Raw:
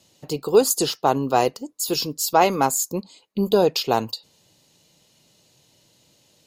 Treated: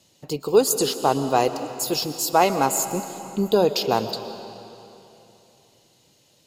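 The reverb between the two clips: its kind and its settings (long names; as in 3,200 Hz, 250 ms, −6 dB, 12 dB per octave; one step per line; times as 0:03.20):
comb and all-pass reverb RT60 3 s, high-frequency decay 0.9×, pre-delay 90 ms, DRR 10 dB
level −1 dB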